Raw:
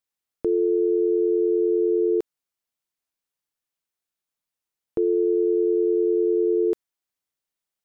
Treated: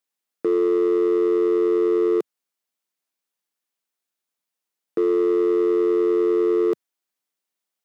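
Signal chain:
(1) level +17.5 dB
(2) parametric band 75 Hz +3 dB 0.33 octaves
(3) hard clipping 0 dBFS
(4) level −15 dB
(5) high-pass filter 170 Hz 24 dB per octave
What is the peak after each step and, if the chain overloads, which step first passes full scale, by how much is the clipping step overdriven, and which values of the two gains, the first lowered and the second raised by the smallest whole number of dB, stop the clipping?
+3.0, +3.0, 0.0, −15.0, −13.0 dBFS
step 1, 3.0 dB
step 1 +14.5 dB, step 4 −12 dB

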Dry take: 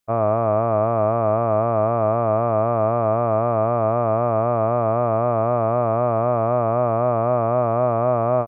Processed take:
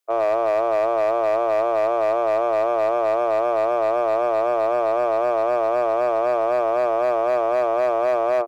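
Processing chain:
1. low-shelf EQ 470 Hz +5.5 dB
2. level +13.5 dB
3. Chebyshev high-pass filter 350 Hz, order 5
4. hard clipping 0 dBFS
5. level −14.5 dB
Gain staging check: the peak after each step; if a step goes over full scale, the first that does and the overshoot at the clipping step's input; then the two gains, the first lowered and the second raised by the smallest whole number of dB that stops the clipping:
−5.5, +8.0, +4.5, 0.0, −14.5 dBFS
step 2, 4.5 dB
step 2 +8.5 dB, step 5 −9.5 dB

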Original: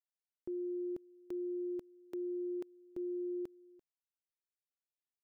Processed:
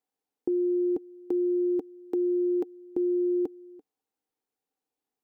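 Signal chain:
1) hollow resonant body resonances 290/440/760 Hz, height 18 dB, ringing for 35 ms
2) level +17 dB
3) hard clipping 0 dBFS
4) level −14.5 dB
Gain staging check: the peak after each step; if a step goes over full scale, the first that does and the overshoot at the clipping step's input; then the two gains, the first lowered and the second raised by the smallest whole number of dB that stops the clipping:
−20.0, −3.0, −3.0, −17.5 dBFS
no step passes full scale

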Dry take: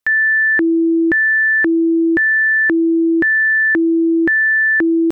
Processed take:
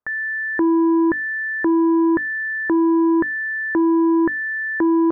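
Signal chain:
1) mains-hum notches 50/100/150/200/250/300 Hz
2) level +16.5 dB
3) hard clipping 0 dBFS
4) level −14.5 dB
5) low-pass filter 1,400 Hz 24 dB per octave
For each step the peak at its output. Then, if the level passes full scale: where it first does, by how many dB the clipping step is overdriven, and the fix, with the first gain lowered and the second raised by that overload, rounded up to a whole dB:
−9.0, +7.5, 0.0, −14.5, −13.0 dBFS
step 2, 7.5 dB
step 2 +8.5 dB, step 4 −6.5 dB

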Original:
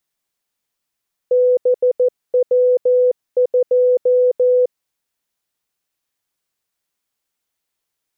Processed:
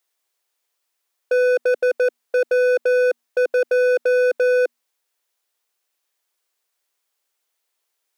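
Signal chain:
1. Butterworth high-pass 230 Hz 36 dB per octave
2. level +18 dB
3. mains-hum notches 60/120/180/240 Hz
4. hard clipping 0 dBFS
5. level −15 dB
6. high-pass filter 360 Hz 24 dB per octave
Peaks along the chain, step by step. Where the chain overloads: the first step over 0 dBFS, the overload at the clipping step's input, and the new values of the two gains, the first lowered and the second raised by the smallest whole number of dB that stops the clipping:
−10.0, +8.0, +8.0, 0.0, −15.0, −12.5 dBFS
step 2, 8.0 dB
step 2 +10 dB, step 5 −7 dB

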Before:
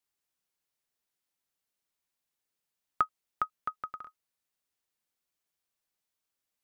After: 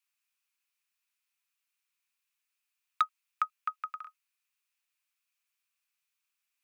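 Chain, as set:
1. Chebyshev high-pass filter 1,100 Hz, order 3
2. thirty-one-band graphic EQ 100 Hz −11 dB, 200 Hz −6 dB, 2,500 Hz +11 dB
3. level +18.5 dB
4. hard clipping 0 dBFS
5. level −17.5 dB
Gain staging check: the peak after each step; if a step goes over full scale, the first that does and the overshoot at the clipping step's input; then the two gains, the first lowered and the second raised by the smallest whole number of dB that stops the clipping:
−14.0, −13.5, +5.0, 0.0, −17.5 dBFS
step 3, 5.0 dB
step 3 +13.5 dB, step 5 −12.5 dB

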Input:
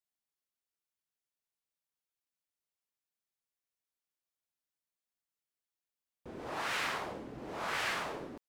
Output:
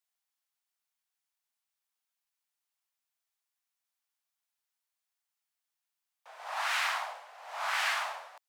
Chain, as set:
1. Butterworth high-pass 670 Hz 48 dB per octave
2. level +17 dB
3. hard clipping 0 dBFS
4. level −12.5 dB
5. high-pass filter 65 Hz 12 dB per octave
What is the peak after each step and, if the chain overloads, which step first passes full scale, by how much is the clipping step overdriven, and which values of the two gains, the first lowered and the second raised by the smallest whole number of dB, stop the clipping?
−22.5, −5.5, −5.5, −18.0, −18.0 dBFS
no step passes full scale

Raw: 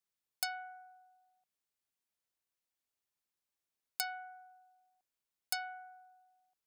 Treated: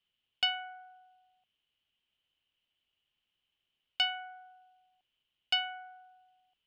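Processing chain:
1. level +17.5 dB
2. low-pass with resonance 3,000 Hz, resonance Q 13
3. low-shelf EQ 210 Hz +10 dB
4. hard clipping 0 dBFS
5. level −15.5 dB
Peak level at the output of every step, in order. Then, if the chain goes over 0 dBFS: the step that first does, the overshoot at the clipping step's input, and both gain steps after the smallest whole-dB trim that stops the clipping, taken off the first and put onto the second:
−0.5, −2.5, −2.5, −2.5, −18.0 dBFS
no step passes full scale

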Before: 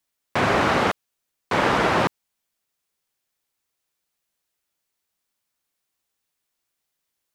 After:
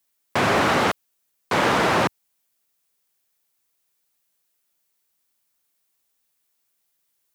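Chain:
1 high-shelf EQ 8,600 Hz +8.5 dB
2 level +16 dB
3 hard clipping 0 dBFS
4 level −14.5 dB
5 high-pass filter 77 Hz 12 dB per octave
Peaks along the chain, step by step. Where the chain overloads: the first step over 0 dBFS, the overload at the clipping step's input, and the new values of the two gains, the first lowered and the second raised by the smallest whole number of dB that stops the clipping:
−6.5, +9.5, 0.0, −14.5, −11.0 dBFS
step 2, 9.5 dB
step 2 +6 dB, step 4 −4.5 dB

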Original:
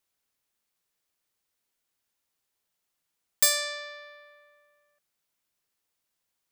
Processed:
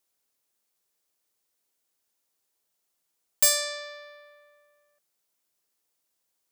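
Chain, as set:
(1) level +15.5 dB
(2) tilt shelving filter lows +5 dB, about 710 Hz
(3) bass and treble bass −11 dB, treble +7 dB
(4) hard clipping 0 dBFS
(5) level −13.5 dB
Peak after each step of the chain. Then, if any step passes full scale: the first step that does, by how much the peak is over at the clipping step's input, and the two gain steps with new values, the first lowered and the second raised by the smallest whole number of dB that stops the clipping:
+7.5, +2.5, +8.5, 0.0, −13.5 dBFS
step 1, 8.5 dB
step 1 +6.5 dB, step 5 −4.5 dB

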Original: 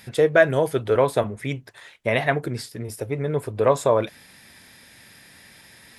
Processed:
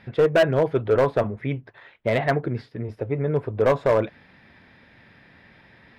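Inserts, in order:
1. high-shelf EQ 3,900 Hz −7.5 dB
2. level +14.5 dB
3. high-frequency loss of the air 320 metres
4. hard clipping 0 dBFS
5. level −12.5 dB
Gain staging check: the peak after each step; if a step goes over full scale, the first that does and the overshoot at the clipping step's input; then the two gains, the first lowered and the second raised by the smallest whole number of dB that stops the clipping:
−4.5, +10.0, +8.5, 0.0, −12.5 dBFS
step 2, 8.5 dB
step 2 +5.5 dB, step 5 −3.5 dB

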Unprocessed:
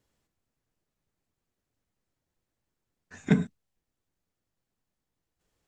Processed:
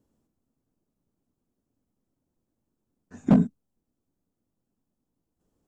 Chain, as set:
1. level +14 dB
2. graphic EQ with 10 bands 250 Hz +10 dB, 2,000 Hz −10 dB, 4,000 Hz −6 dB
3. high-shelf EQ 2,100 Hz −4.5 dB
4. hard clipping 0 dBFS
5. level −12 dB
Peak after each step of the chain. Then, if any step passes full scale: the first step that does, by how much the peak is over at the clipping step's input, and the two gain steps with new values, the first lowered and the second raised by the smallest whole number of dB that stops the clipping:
+4.0, +8.5, +8.5, 0.0, −12.0 dBFS
step 1, 8.5 dB
step 1 +5 dB, step 5 −3 dB

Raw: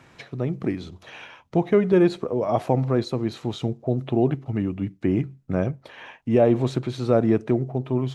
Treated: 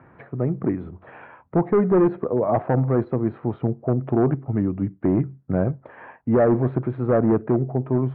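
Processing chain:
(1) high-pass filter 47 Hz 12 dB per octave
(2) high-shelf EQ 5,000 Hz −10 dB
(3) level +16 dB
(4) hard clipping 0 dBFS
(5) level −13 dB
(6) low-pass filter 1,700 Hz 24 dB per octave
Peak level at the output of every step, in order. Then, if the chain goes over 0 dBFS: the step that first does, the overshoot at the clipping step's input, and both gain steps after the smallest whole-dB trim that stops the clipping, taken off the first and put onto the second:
−7.5, −7.5, +8.5, 0.0, −13.0, −11.5 dBFS
step 3, 8.5 dB
step 3 +7 dB, step 5 −4 dB

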